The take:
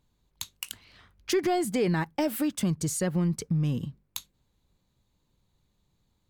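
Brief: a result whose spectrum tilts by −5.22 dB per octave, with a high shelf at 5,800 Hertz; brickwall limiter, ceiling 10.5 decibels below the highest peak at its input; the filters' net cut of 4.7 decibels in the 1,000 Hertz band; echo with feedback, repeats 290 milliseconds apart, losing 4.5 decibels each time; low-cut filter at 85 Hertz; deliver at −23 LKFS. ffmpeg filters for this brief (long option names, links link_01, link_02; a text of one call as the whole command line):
ffmpeg -i in.wav -af "highpass=85,equalizer=frequency=1000:width_type=o:gain=-7.5,highshelf=frequency=5800:gain=-4.5,alimiter=level_in=2.5dB:limit=-24dB:level=0:latency=1,volume=-2.5dB,aecho=1:1:290|580|870|1160|1450|1740|2030|2320|2610:0.596|0.357|0.214|0.129|0.0772|0.0463|0.0278|0.0167|0.01,volume=11dB" out.wav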